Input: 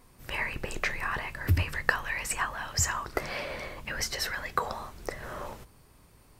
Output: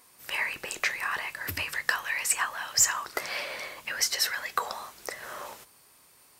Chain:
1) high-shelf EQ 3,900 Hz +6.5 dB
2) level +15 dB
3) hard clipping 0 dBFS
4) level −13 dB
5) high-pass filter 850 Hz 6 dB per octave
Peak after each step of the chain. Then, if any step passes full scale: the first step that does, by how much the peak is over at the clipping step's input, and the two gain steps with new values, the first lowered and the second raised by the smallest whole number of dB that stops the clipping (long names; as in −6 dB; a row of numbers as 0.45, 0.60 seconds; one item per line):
−5.5, +9.5, 0.0, −13.0, −9.5 dBFS
step 2, 9.5 dB
step 2 +5 dB, step 4 −3 dB